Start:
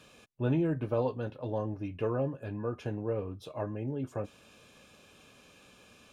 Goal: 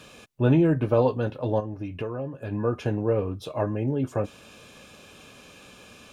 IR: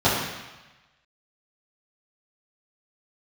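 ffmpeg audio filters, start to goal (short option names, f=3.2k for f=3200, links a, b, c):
-filter_complex "[0:a]asplit=3[a][b][c];[a]afade=t=out:st=1.59:d=0.02[d];[b]acompressor=threshold=-39dB:ratio=4,afade=t=in:st=1.59:d=0.02,afade=t=out:st=2.51:d=0.02[e];[c]afade=t=in:st=2.51:d=0.02[f];[d][e][f]amix=inputs=3:normalize=0,volume=9dB"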